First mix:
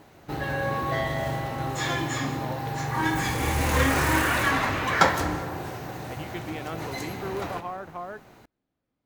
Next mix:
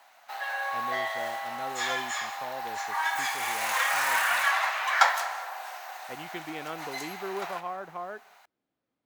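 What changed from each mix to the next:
background: add Chebyshev high-pass 690 Hz, order 4; master: add high-pass 290 Hz 6 dB/octave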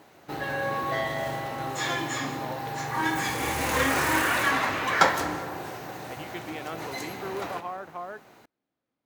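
background: remove Chebyshev high-pass 690 Hz, order 4

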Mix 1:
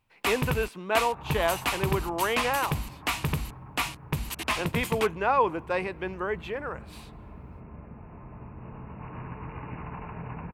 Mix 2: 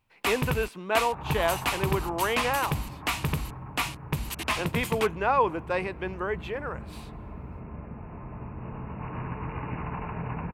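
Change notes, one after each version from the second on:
second sound +4.5 dB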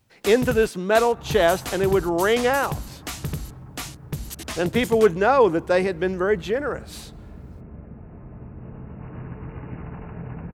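speech +11.5 dB; master: add fifteen-band graphic EQ 1 kHz -11 dB, 2.5 kHz -10 dB, 6.3 kHz +5 dB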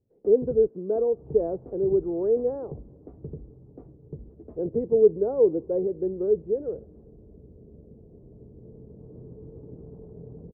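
master: add four-pole ladder low-pass 500 Hz, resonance 60%

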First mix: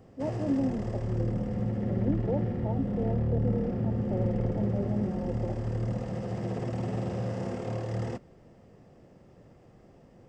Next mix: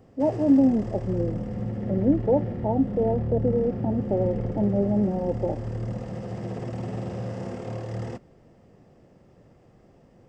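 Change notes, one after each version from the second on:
speech +10.5 dB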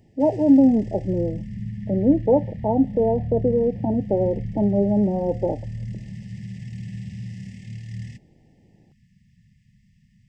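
speech +4.0 dB; background: add brick-wall FIR band-stop 230–1700 Hz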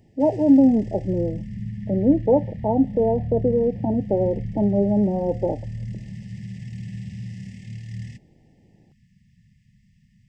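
no change

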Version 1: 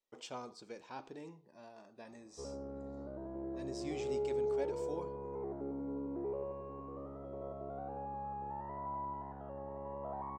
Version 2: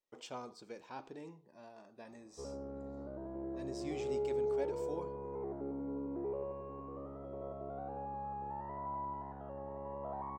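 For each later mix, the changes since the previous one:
speech: add low-pass 3.7 kHz 6 dB/octave; master: remove distance through air 53 m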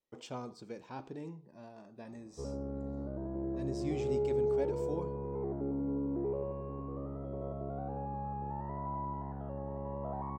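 master: add peaking EQ 110 Hz +11.5 dB 2.8 oct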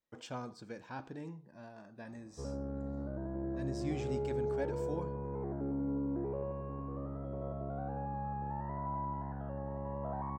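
master: add graphic EQ with 31 bands 100 Hz +5 dB, 400 Hz -6 dB, 1.6 kHz +9 dB

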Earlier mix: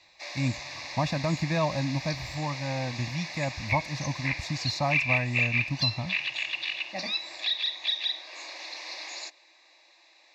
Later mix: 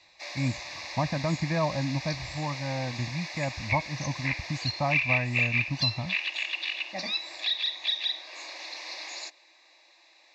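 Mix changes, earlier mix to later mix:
speech: add brick-wall FIR low-pass 2.5 kHz; reverb: off

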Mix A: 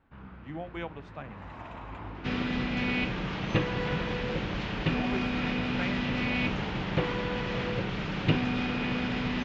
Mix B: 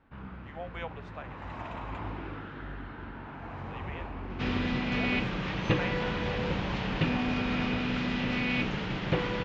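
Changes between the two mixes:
speech: add steep high-pass 410 Hz 48 dB/octave; first sound +3.5 dB; second sound: entry +2.15 s

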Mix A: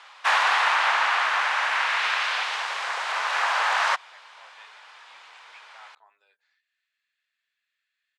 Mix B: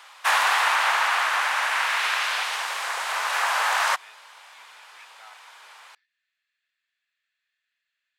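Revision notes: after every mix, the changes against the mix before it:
speech: entry -0.55 s; background: remove low-pass 5.3 kHz 12 dB/octave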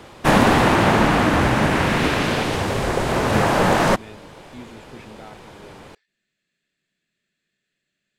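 speech: remove distance through air 110 m; master: remove high-pass 960 Hz 24 dB/octave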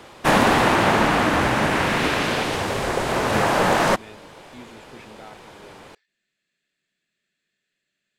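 master: add bass shelf 270 Hz -7 dB

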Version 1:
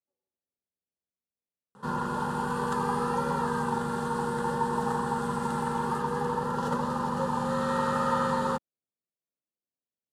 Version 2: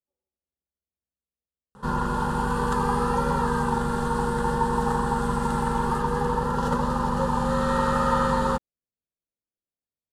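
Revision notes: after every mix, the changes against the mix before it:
background +4.0 dB; master: remove high-pass 130 Hz 12 dB/octave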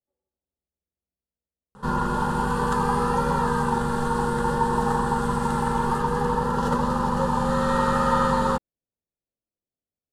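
speech +5.0 dB; reverb: on, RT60 0.50 s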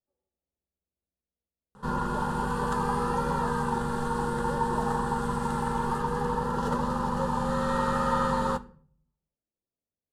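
speech: send on; background -5.0 dB

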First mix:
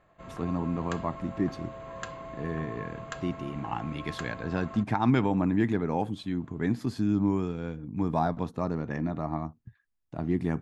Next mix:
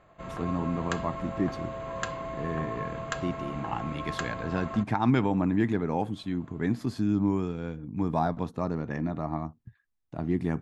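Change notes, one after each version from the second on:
background +5.5 dB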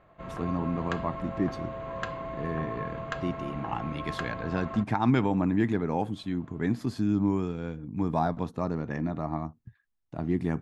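background: add distance through air 160 m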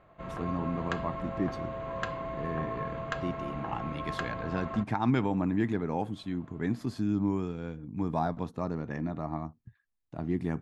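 speech -3.0 dB

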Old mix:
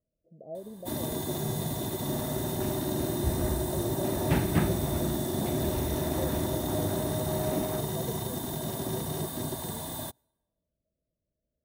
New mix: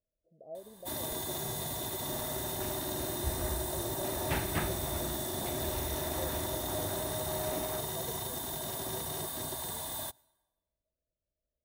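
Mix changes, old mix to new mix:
first sound: send +8.5 dB; master: add peaking EQ 190 Hz -12.5 dB 2.5 oct

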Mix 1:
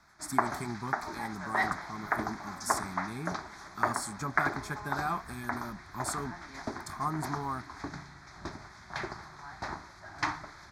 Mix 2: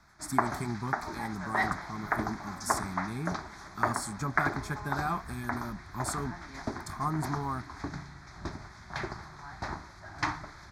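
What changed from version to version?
master: add bass shelf 190 Hz +7 dB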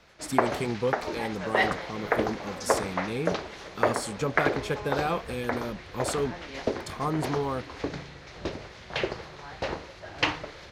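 master: remove static phaser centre 1.2 kHz, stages 4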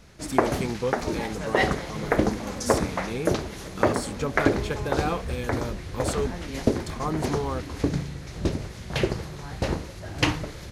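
background: remove three-band isolator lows -13 dB, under 420 Hz, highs -20 dB, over 5.3 kHz

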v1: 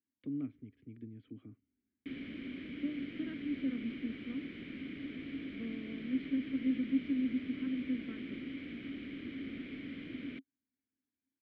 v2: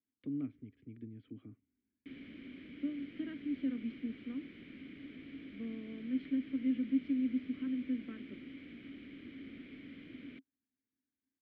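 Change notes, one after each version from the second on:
background -6.5 dB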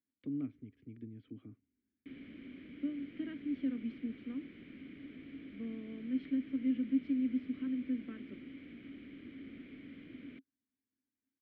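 speech: remove distance through air 170 m; master: add treble shelf 3.7 kHz -8.5 dB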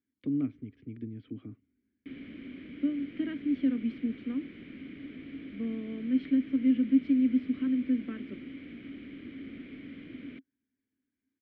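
speech +8.0 dB; background +6.0 dB

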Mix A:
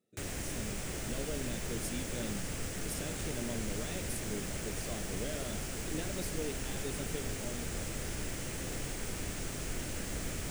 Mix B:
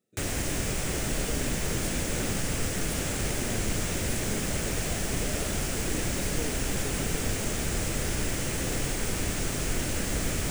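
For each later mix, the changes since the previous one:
background +9.0 dB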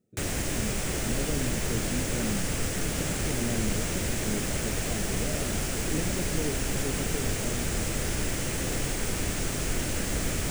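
speech: add tilt EQ -4 dB/octave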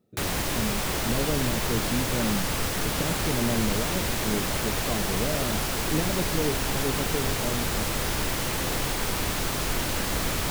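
speech +4.5 dB; master: add ten-band graphic EQ 1 kHz +10 dB, 4 kHz +7 dB, 8 kHz -7 dB, 16 kHz +11 dB

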